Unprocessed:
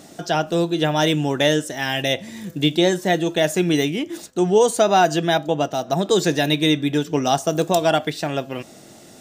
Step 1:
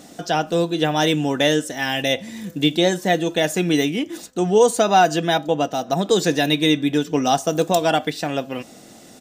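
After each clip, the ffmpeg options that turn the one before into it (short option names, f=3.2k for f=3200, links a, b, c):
-af "aecho=1:1:4:0.31"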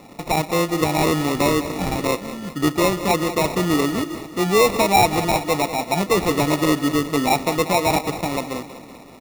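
-af "acrusher=samples=28:mix=1:aa=0.000001,aecho=1:1:190|380|570|760|950|1140:0.2|0.112|0.0626|0.035|0.0196|0.011,acontrast=39,volume=-5.5dB"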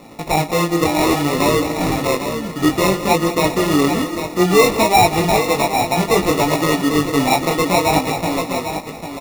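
-filter_complex "[0:a]flanger=delay=17.5:depth=6:speed=0.6,asplit=2[a][b];[b]aecho=0:1:797:0.376[c];[a][c]amix=inputs=2:normalize=0,volume=6dB"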